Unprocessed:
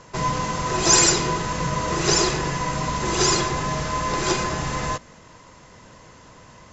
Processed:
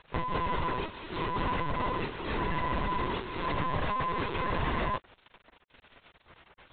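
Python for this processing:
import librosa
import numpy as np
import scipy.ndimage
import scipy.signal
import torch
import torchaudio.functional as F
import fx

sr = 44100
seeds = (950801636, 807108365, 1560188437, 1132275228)

y = fx.over_compress(x, sr, threshold_db=-26.0, ratio=-1.0)
y = fx.quant_dither(y, sr, seeds[0], bits=6, dither='none')
y = fx.lpc_vocoder(y, sr, seeds[1], excitation='pitch_kept', order=16)
y = y * 10.0 ** (-5.5 / 20.0)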